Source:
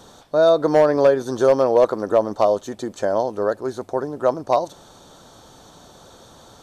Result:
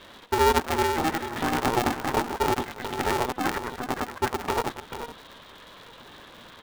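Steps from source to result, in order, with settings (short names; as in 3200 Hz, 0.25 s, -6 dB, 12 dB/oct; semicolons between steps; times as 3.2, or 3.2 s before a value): local time reversal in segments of 65 ms; tilt +4 dB/oct; in parallel at 0 dB: compressor 4:1, threshold -28 dBFS, peak gain reduction 13 dB; on the sum: limiter -10 dBFS, peak gain reduction 8 dB; rippled Chebyshev high-pass 480 Hz, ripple 6 dB; air absorption 160 m; on a send: echo 0.434 s -9.5 dB; on the sum: LPC vocoder at 8 kHz pitch kept; polarity switched at an audio rate 240 Hz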